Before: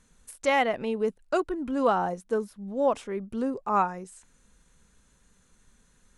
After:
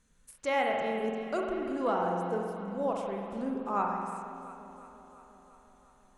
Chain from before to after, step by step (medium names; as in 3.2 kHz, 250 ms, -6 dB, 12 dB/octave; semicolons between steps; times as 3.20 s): echo whose repeats swap between lows and highs 174 ms, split 800 Hz, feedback 80%, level -12 dB; spring tank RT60 2 s, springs 45 ms, chirp 65 ms, DRR 0.5 dB; trim -7.5 dB